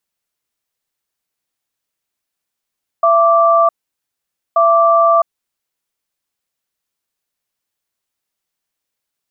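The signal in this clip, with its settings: cadence 671 Hz, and 1.17 kHz, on 0.66 s, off 0.87 s, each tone -10.5 dBFS 2.89 s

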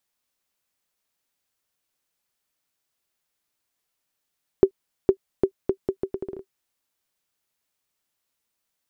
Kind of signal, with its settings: bouncing ball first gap 0.46 s, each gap 0.75, 386 Hz, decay 79 ms -3 dBFS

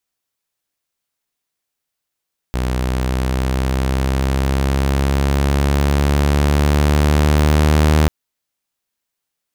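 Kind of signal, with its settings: gliding synth tone saw, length 5.54 s, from 62.7 Hz, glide +3.5 st, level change +7 dB, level -7.5 dB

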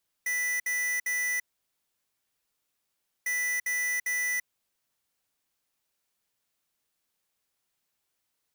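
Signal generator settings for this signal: beep pattern square 1.98 kHz, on 0.34 s, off 0.06 s, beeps 3, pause 1.86 s, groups 2, -29 dBFS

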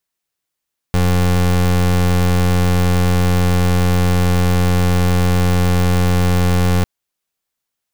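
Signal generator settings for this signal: pulse 89.3 Hz, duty 28% -13.5 dBFS 5.90 s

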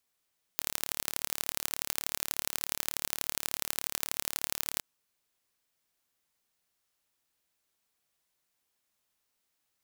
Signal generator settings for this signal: pulse train 36.6 per s, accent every 3, -2 dBFS 4.21 s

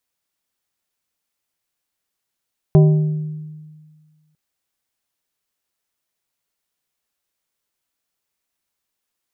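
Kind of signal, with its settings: glass hit plate, length 1.60 s, lowest mode 154 Hz, decay 1.73 s, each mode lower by 7.5 dB, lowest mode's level -6 dB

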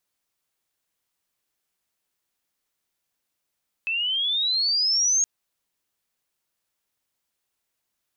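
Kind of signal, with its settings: sweep logarithmic 2.6 kHz -> 6.6 kHz -23 dBFS -> -17.5 dBFS 1.37 s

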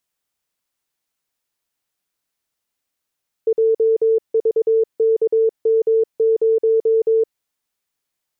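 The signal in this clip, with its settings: Morse "JVKM0" 22 wpm 447 Hz -12 dBFS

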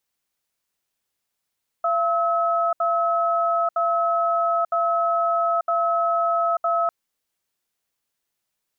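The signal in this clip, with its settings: cadence 680 Hz, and 1.29 kHz, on 0.89 s, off 0.07 s, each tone -21 dBFS 5.05 s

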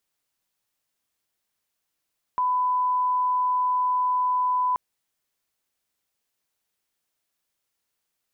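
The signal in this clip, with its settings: line-up tone -20 dBFS 2.38 s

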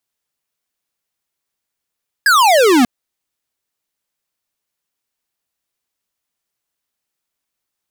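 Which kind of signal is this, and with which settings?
laser zap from 1.7 kHz, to 230 Hz, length 0.59 s square, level -10 dB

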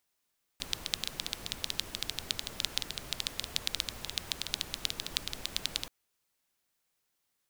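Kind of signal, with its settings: rain from filtered ticks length 5.28 s, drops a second 11, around 3.7 kHz, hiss -7 dB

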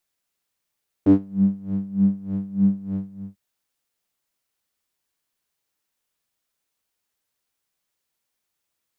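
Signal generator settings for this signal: synth patch with tremolo G3, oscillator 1 triangle, oscillator 2 saw, interval 0 st, detune 14 cents, oscillator 2 level -3.5 dB, sub -1 dB, filter bandpass, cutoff 150 Hz, Q 5.4, filter envelope 1 oct, filter decay 0.35 s, attack 4.9 ms, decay 0.12 s, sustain -18 dB, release 0.40 s, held 1.90 s, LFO 3.3 Hz, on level 19.5 dB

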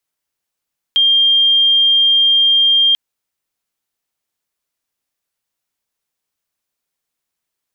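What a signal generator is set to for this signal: tone sine 3.2 kHz -8.5 dBFS 1.99 s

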